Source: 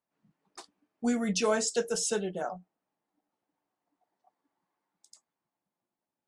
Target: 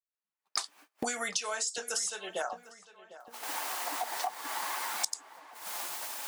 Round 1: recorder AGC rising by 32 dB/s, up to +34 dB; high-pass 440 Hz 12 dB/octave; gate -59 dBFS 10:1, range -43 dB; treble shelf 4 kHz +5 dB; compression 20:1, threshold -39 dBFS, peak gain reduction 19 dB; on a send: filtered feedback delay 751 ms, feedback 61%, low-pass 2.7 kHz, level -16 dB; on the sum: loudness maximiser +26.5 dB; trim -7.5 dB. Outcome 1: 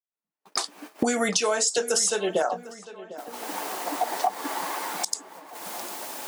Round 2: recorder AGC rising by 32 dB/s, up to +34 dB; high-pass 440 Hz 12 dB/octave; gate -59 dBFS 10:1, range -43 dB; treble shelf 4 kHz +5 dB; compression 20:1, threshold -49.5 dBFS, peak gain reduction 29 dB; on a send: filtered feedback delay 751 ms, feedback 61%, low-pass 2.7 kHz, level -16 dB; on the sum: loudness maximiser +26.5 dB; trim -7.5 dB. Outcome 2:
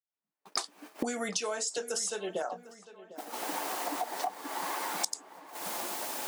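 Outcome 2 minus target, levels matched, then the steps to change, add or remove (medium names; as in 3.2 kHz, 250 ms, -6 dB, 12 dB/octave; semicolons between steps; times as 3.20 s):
500 Hz band +4.5 dB
change: high-pass 980 Hz 12 dB/octave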